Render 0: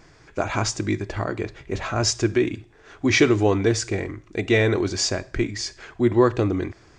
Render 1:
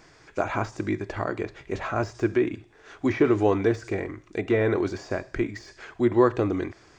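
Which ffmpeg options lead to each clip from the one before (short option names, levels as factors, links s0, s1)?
-filter_complex "[0:a]deesser=0.85,lowshelf=f=200:g=-8,acrossover=split=2100[s0][s1];[s1]acompressor=threshold=0.00447:ratio=6[s2];[s0][s2]amix=inputs=2:normalize=0"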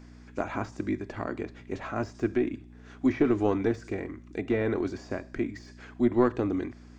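-af "aeval=exprs='0.473*(cos(1*acos(clip(val(0)/0.473,-1,1)))-cos(1*PI/2))+0.0944*(cos(2*acos(clip(val(0)/0.473,-1,1)))-cos(2*PI/2))':c=same,aeval=exprs='val(0)+0.00708*(sin(2*PI*60*n/s)+sin(2*PI*2*60*n/s)/2+sin(2*PI*3*60*n/s)/3+sin(2*PI*4*60*n/s)/4+sin(2*PI*5*60*n/s)/5)':c=same,equalizer=f=250:w=2.7:g=8.5,volume=0.473"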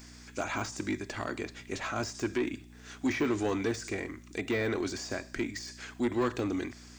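-af "crystalizer=i=8:c=0,asoftclip=type=tanh:threshold=0.112,volume=0.708"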